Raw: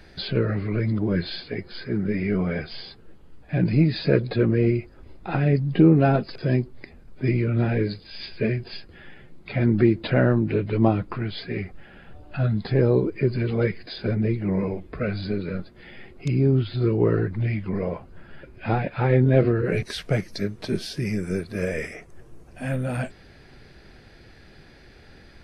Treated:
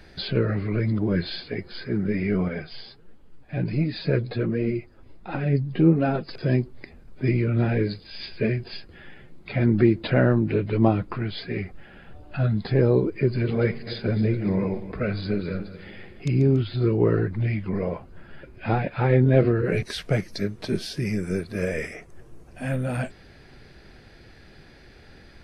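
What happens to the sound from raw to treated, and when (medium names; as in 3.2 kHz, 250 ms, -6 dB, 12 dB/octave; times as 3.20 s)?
2.48–6.28 s: flange 1.4 Hz, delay 3.1 ms, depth 6.4 ms, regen +39%
13.22–16.60 s: backward echo that repeats 142 ms, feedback 59%, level -13 dB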